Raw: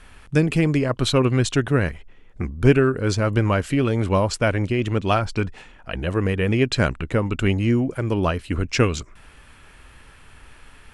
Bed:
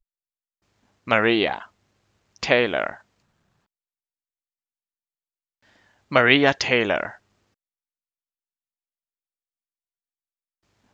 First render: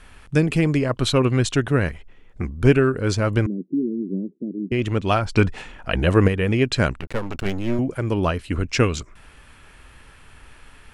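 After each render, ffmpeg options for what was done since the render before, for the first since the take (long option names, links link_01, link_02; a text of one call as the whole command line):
ffmpeg -i in.wav -filter_complex "[0:a]asettb=1/sr,asplit=3[link_01][link_02][link_03];[link_01]atrim=end=3.464[link_04];[link_02]atrim=start=3.46:end=4.72,asetpts=PTS-STARTPTS,afade=type=in:duration=0.004:curve=qsin,afade=type=out:start_time=1.256:duration=0.004:curve=qsin,asuperpass=centerf=260:order=8:qfactor=1.3[link_05];[link_03]atrim=start=4.716[link_06];[link_04][link_05]acrossfade=duration=0.004:curve1=hsin:curve2=qsin[link_07];[link_07][link_06]acrossfade=duration=0.004:curve1=qsin:curve2=hsin,asettb=1/sr,asplit=3[link_08][link_09][link_10];[link_08]atrim=end=7.004[link_11];[link_09]atrim=start=7:end=7.79,asetpts=PTS-STARTPTS,afade=type=in:duration=0.004:curve=qsin,afade=type=out:start_time=0.786:duration=0.004:curve=qsin,aeval=exprs='max(val(0),0)':channel_layout=same[link_12];[link_10]atrim=start=7.786[link_13];[link_11][link_12]acrossfade=duration=0.004:curve1=hsin:curve2=qsin[link_14];[link_14][link_13]acrossfade=duration=0.004:curve1=qsin:curve2=hsin,asplit=3[link_15][link_16][link_17];[link_15]atrim=end=5.352[link_18];[link_16]atrim=start=5.348:end=6.282,asetpts=PTS-STARTPTS,volume=6.5dB[link_19];[link_17]atrim=start=6.278[link_20];[link_18][link_19]acrossfade=duration=0.004:curve1=hsin:curve2=hsin[link_21];[link_21][link_20]acrossfade=duration=0.004:curve1=hsin:curve2=hsin" out.wav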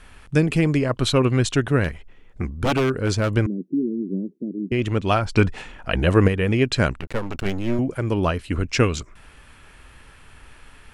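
ffmpeg -i in.wav -filter_complex "[0:a]asettb=1/sr,asplit=3[link_01][link_02][link_03];[link_01]atrim=end=1.844[link_04];[link_02]atrim=start=1.84:end=3.35,asetpts=PTS-STARTPTS,afade=type=in:duration=0.004:curve=qsin,afade=type=out:start_time=1.506:duration=0.004:curve=qsin,aeval=exprs='0.211*(abs(mod(val(0)/0.211+3,4)-2)-1)':channel_layout=same[link_05];[link_03]atrim=start=3.346[link_06];[link_04][link_05]acrossfade=duration=0.004:curve1=hsin:curve2=qsin[link_07];[link_07][link_06]acrossfade=duration=0.004:curve1=qsin:curve2=hsin" out.wav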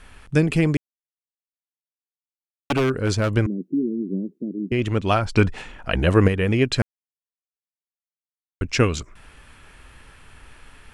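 ffmpeg -i in.wav -filter_complex "[0:a]asplit=5[link_01][link_02][link_03][link_04][link_05];[link_01]atrim=end=0.77,asetpts=PTS-STARTPTS,afade=type=out:start_time=0.766:duration=0.004:curve=hsin[link_06];[link_02]atrim=start=0.77:end=2.7,asetpts=PTS-STARTPTS,volume=0[link_07];[link_03]atrim=start=2.7:end=6.82,asetpts=PTS-STARTPTS,afade=type=in:duration=0.004:curve=hsin,afade=type=out:start_time=4.116:duration=0.004:curve=hsin[link_08];[link_04]atrim=start=6.82:end=8.61,asetpts=PTS-STARTPTS,volume=0[link_09];[link_05]atrim=start=8.61,asetpts=PTS-STARTPTS,afade=type=in:duration=0.004:curve=hsin[link_10];[link_06][link_07][link_08][link_09][link_10]concat=n=5:v=0:a=1" out.wav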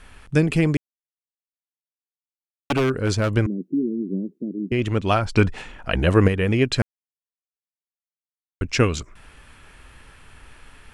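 ffmpeg -i in.wav -af anull out.wav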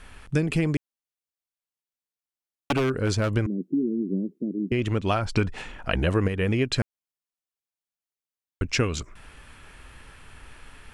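ffmpeg -i in.wav -af "acompressor=threshold=-21dB:ratio=3" out.wav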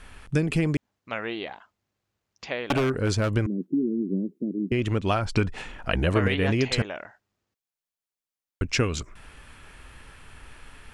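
ffmpeg -i in.wav -i bed.wav -filter_complex "[1:a]volume=-13dB[link_01];[0:a][link_01]amix=inputs=2:normalize=0" out.wav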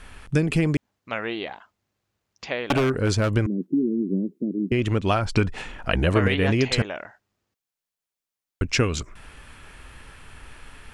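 ffmpeg -i in.wav -af "volume=2.5dB" out.wav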